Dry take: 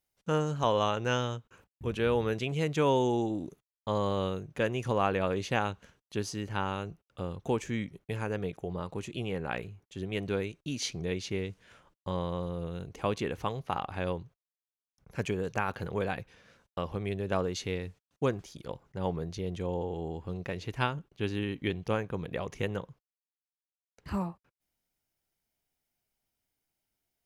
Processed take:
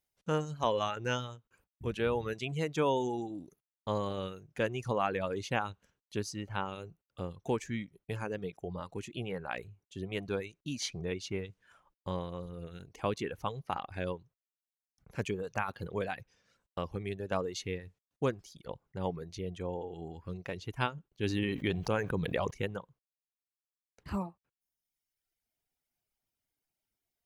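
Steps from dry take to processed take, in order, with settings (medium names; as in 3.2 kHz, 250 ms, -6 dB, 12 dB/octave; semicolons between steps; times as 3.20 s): reverb removal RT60 1.1 s; 21.23–22.51 s: level flattener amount 70%; trim -2 dB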